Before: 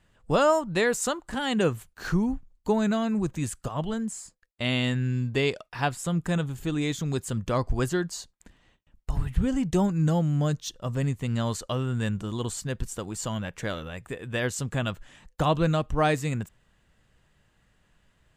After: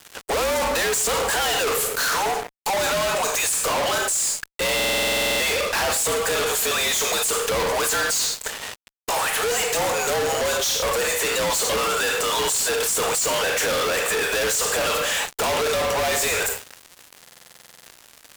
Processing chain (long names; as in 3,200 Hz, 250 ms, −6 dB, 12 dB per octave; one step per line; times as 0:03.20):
in parallel at −2 dB: downward compressor, threshold −34 dBFS, peak gain reduction 16 dB
on the sum: frequency shifter −57 Hz
linear-phase brick-wall high-pass 410 Hz
high-shelf EQ 4,900 Hz +9 dB
soft clipping −23 dBFS, distortion −9 dB
on a send at −9 dB: convolution reverb RT60 0.60 s, pre-delay 23 ms
on the sum: fuzz pedal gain 57 dB, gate −57 dBFS
buffer that repeats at 0:04.75/0:17.21, samples 2,048, times 13
level −8 dB